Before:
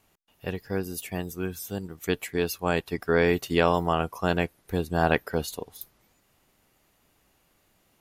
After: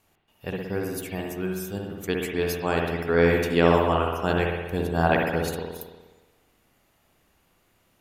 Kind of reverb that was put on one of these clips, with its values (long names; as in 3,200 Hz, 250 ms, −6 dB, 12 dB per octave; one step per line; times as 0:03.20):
spring reverb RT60 1.2 s, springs 59 ms, chirp 65 ms, DRR 0 dB
level −1 dB